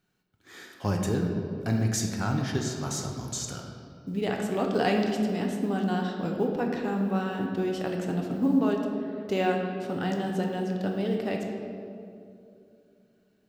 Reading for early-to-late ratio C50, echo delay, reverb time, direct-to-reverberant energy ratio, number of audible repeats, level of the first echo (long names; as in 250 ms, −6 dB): 3.5 dB, no echo audible, 2.6 s, 1.0 dB, no echo audible, no echo audible